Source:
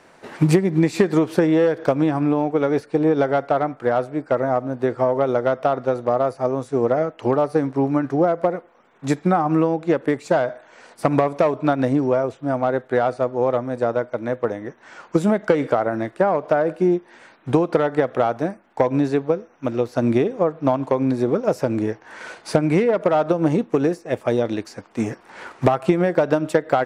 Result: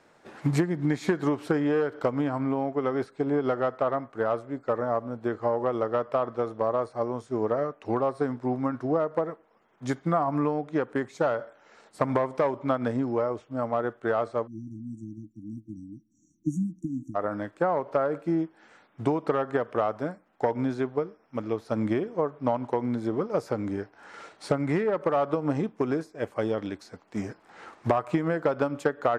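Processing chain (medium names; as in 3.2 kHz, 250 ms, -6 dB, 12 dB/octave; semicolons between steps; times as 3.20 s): dynamic bell 1.3 kHz, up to +6 dB, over -33 dBFS, Q 0.99; tape speed -8%; spectral selection erased 14.47–17.15 s, 340–5600 Hz; trim -9 dB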